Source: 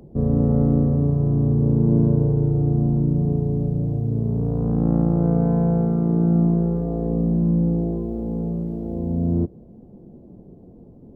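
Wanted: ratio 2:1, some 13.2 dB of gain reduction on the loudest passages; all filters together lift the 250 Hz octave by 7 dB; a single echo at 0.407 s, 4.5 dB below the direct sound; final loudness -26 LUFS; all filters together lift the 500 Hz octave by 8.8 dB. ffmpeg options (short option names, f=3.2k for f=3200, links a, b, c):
-af "equalizer=f=250:t=o:g=8,equalizer=f=500:t=o:g=8,acompressor=threshold=-33dB:ratio=2,aecho=1:1:407:0.596,volume=-0.5dB"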